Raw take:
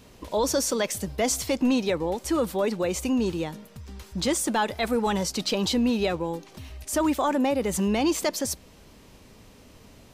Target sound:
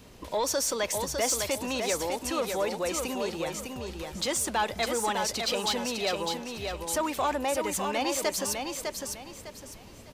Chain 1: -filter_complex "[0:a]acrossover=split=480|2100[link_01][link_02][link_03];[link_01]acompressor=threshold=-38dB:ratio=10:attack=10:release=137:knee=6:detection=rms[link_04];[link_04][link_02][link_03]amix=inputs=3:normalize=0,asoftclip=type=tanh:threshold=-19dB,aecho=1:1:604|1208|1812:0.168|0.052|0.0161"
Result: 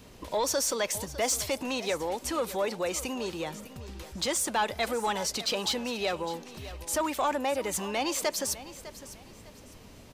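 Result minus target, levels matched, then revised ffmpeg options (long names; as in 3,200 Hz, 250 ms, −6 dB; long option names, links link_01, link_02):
echo-to-direct −10.5 dB
-filter_complex "[0:a]acrossover=split=480|2100[link_01][link_02][link_03];[link_01]acompressor=threshold=-38dB:ratio=10:attack=10:release=137:knee=6:detection=rms[link_04];[link_04][link_02][link_03]amix=inputs=3:normalize=0,asoftclip=type=tanh:threshold=-19dB,aecho=1:1:604|1208|1812|2416:0.562|0.174|0.054|0.0168"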